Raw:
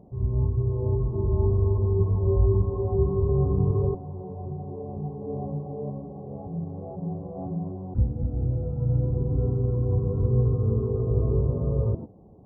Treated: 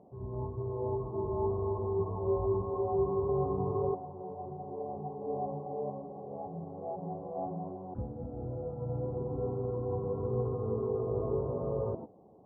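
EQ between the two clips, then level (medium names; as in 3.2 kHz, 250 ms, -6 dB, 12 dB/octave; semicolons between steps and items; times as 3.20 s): dynamic bell 810 Hz, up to +5 dB, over -45 dBFS, Q 1.6; band-pass filter 880 Hz, Q 0.66; 0.0 dB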